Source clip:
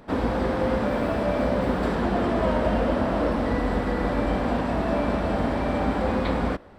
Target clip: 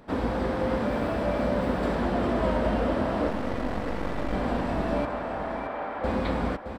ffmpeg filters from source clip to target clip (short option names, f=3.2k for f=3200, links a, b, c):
-filter_complex "[0:a]asettb=1/sr,asplit=3[a][b][c];[a]atrim=end=3.284[d];[b]atrim=start=3.28:end=4.33,asetpts=PTS-STARTPTS,afade=t=in:d=0.004:c=qsin,afade=t=out:st=1.046:d=0.004:c=qsin,aeval=exprs='max(val(0),0)':c=same[e];[c]atrim=start=4.326[f];[d][e]acrossfade=d=0.004:c1=hsin:c2=qsin[g];[g][f]acrossfade=d=0.004:c1=qsin:c2=hsin,asettb=1/sr,asplit=3[h][i][j];[h]atrim=end=5.054[k];[i]atrim=start=5.05:end=6.04,asetpts=PTS-STARTPTS,afade=t=in:d=0.004:c=qsin,afade=t=out:st=0.986:d=0.004:c=qsin,highpass=590,lowpass=2k[l];[j]atrim=start=6.036[m];[k][l]acrossfade=d=0.004:c1=hsin:c2=qsin[n];[n][m]acrossfade=d=0.004:c1=qsin:c2=hsin,aecho=1:1:618|1236|1854:0.355|0.0923|0.024,volume=-3dB"